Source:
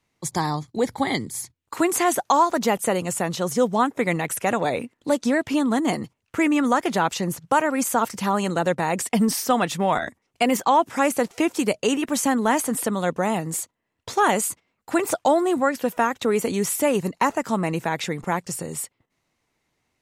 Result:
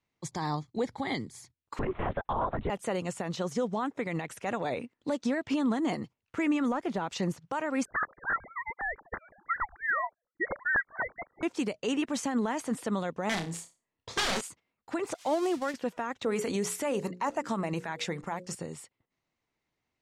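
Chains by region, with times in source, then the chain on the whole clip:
1.79–2.70 s: low-pass 2.6 kHz + LPC vocoder at 8 kHz whisper + tape noise reduction on one side only decoder only
6.68–7.08 s: treble shelf 8.9 kHz +9 dB + de-esser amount 95%
7.85–11.43 s: formants replaced by sine waves + high-pass 870 Hz 24 dB/octave + frequency inversion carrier 2.6 kHz
13.29–14.41 s: band-stop 1.5 kHz, Q 11 + integer overflow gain 17 dB + flutter echo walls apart 5.1 m, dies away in 0.27 s
15.14–15.74 s: zero-crossing glitches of -17.5 dBFS + expander -20 dBFS
16.25–18.55 s: treble shelf 7.5 kHz +9 dB + hum notches 60/120/180/240/300/360/420/480/540 Hz + sweeping bell 2.8 Hz 540–1800 Hz +6 dB
whole clip: low-pass 6 kHz 12 dB/octave; peak limiter -18 dBFS; upward expansion 1.5:1, over -37 dBFS; trim -2 dB

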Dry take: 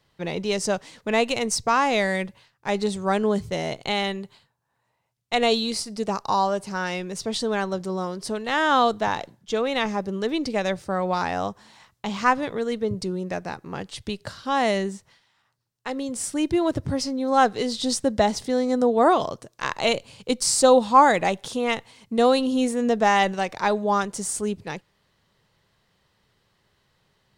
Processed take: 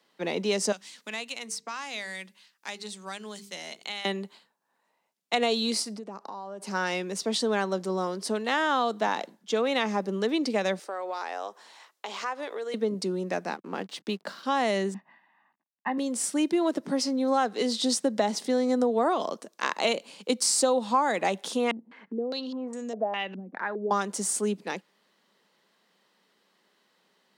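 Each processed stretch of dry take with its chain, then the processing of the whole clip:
0.72–4.05 s: amplifier tone stack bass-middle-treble 5-5-5 + hum notches 50/100/150/200/250/300/350/400/450 Hz + three bands compressed up and down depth 70%
5.96–6.62 s: treble shelf 2.3 kHz -11.5 dB + compression 12:1, threshold -35 dBFS
10.79–12.74 s: high-pass 370 Hz 24 dB/octave + compression 2.5:1, threshold -33 dBFS
13.53–14.43 s: treble shelf 8.3 kHz -10.5 dB + hysteresis with a dead band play -48 dBFS
14.94–15.98 s: CVSD coder 64 kbps + low-pass 2.2 kHz 24 dB/octave + comb 1.1 ms, depth 93%
21.71–23.91 s: compression 2.5:1, threshold -39 dBFS + step-sequenced low-pass 4.9 Hz 240–7400 Hz
whole clip: steep high-pass 190 Hz 48 dB/octave; compression 5:1, threshold -21 dBFS

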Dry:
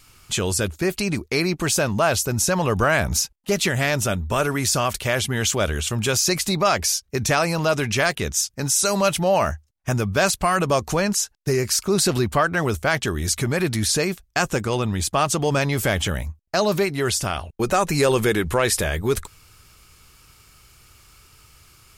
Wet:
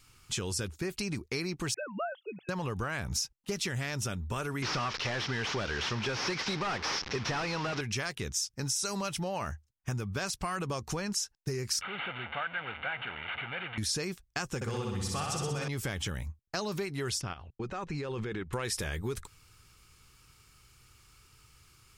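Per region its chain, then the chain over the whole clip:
1.74–2.49 s: formants replaced by sine waves + high-pass 410 Hz + touch-sensitive phaser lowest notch 560 Hz, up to 2.4 kHz, full sweep at -19 dBFS
4.62–7.81 s: one-bit delta coder 32 kbps, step -30.5 dBFS + overdrive pedal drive 21 dB, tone 3.1 kHz, clips at -8 dBFS
11.81–13.78 s: one-bit delta coder 16 kbps, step -18.5 dBFS + high-pass 1.3 kHz 6 dB/octave + comb 1.4 ms, depth 56%
14.55–15.68 s: comb of notches 320 Hz + flutter echo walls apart 10.7 m, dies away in 1.3 s
17.21–18.53 s: distance through air 160 m + level held to a coarse grid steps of 13 dB
whole clip: graphic EQ with 31 bands 125 Hz +4 dB, 630 Hz -8 dB, 12.5 kHz -6 dB; compression, threshold -22 dBFS; dynamic bell 5.4 kHz, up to +7 dB, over -47 dBFS, Q 5.6; trim -8.5 dB

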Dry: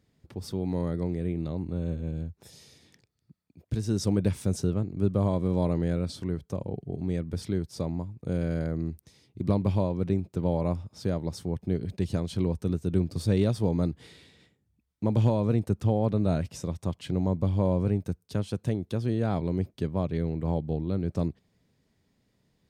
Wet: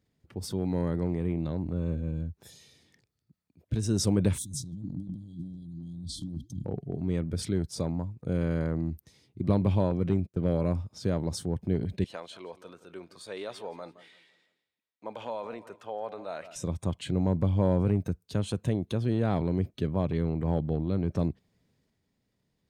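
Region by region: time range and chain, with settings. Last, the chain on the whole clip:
4.38–6.65 s: flange 1.9 Hz, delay 4 ms, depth 8.8 ms, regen -89% + compressor with a negative ratio -37 dBFS + brick-wall FIR band-stop 350–3100 Hz
9.91–10.73 s: peaking EQ 880 Hz -14.5 dB 0.28 oct + hard clipper -16 dBFS + gate -40 dBFS, range -17 dB
12.04–16.56 s: high-pass 890 Hz + tilt EQ -2.5 dB/octave + feedback delay 168 ms, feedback 42%, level -16.5 dB
whole clip: spectral noise reduction 7 dB; dynamic bell 8.6 kHz, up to +4 dB, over -60 dBFS, Q 1.6; transient shaper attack 0 dB, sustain +5 dB

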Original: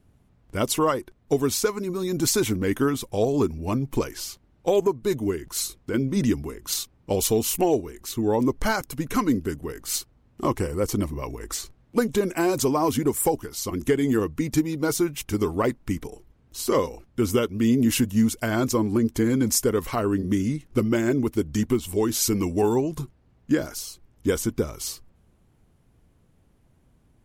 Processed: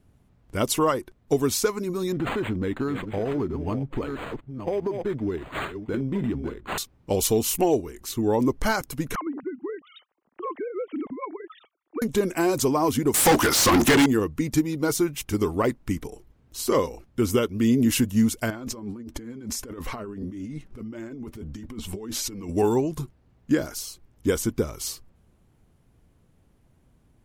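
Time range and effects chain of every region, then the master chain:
2.12–6.78 s: chunks repeated in reverse 682 ms, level -11 dB + compression, threshold -22 dBFS + decimation joined by straight lines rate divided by 8×
9.15–12.02 s: formants replaced by sine waves + compression 16:1, threshold -26 dBFS
13.14–14.06 s: band-stop 420 Hz, Q 5.2 + overdrive pedal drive 37 dB, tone 5.4 kHz, clips at -10 dBFS
18.50–22.49 s: treble shelf 5.6 kHz -10.5 dB + compressor with a negative ratio -31 dBFS + flange 1.6 Hz, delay 3.1 ms, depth 2.2 ms, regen +54%
whole clip: none

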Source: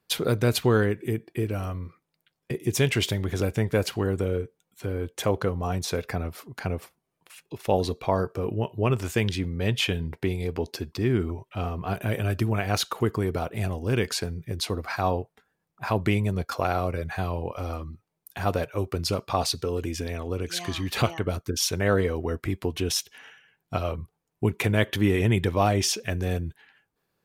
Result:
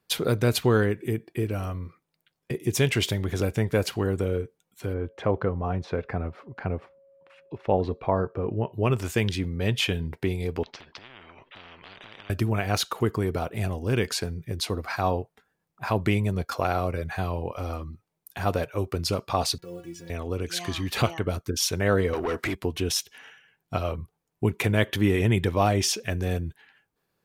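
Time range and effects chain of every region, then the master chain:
4.93–8.72 s: low-pass 1.9 kHz + whistle 550 Hz -55 dBFS
10.63–12.30 s: low-pass 3 kHz 24 dB/octave + compression, threshold -31 dBFS + spectrum-flattening compressor 10:1
19.58–20.10 s: send-on-delta sampling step -44.5 dBFS + inharmonic resonator 170 Hz, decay 0.23 s, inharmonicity 0.008
22.13–22.55 s: compression 2.5:1, threshold -30 dBFS + overdrive pedal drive 24 dB, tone 5.2 kHz, clips at -18.5 dBFS
whole clip: none

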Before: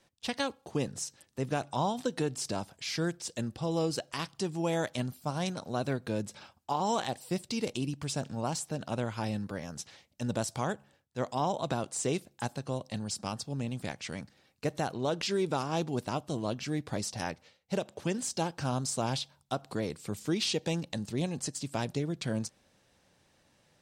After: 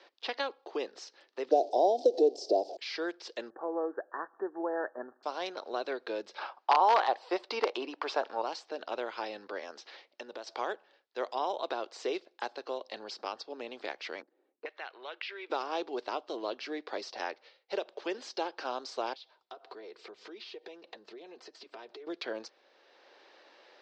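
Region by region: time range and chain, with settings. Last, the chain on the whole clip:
1.51–2.77 s: jump at every zero crossing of -43 dBFS + FFT filter 130 Hz 0 dB, 320 Hz +13 dB, 710 Hz +15 dB, 1.2 kHz -27 dB, 2.1 kHz -24 dB, 5.4 kHz +3 dB
3.50–5.23 s: Chebyshev low-pass 1.8 kHz, order 10 + upward compressor, threshold -47 dBFS
6.38–8.42 s: integer overflow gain 20.5 dB + peaking EQ 980 Hz +14.5 dB 2.2 oct
9.78–10.47 s: compression 12:1, threshold -38 dBFS + high-pass 58 Hz
14.22–15.50 s: auto-wah 250–2300 Hz, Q 2.1, up, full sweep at -29.5 dBFS + treble shelf 8.1 kHz -9 dB
19.13–22.07 s: treble shelf 4.4 kHz -5.5 dB + compression 8:1, threshold -45 dBFS + comb of notches 280 Hz
whole clip: elliptic band-pass 370–4700 Hz, stop band 40 dB; three bands compressed up and down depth 40%

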